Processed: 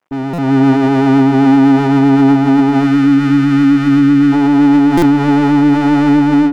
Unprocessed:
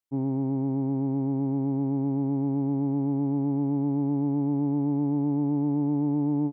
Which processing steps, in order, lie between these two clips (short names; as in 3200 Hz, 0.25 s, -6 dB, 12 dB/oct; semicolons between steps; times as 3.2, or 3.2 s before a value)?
median filter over 25 samples; overdrive pedal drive 43 dB, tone 1100 Hz, clips at -18.5 dBFS; spectral gain 2.84–4.33, 350–1100 Hz -15 dB; on a send: tape echo 0.111 s, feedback 69%, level -6 dB, low-pass 1000 Hz; on the sum: AGC gain up to 11.5 dB; limiter -8.5 dBFS, peak gain reduction 4 dB; stuck buffer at 0.33/4.97, samples 256, times 8; gain +4.5 dB